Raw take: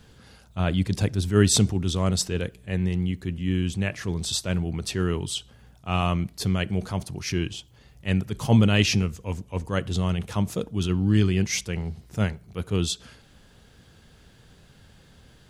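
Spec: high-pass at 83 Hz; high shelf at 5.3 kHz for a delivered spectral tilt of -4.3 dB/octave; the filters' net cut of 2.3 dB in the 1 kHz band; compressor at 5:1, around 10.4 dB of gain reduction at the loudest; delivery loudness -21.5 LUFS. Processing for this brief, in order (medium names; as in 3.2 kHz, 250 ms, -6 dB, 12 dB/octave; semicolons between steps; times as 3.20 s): high-pass 83 Hz; peaking EQ 1 kHz -3.5 dB; treble shelf 5.3 kHz +7 dB; compression 5:1, threshold -25 dBFS; trim +9 dB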